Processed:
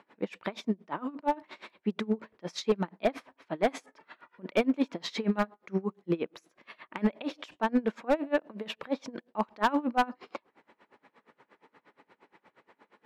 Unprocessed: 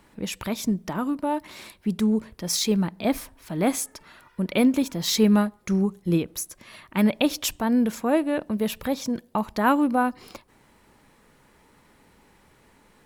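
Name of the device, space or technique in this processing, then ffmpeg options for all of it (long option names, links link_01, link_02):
helicopter radio: -af "highpass=320,lowpass=2600,aeval=exprs='val(0)*pow(10,-26*(0.5-0.5*cos(2*PI*8.5*n/s))/20)':channel_layout=same,asoftclip=type=hard:threshold=-22dB,volume=4.5dB"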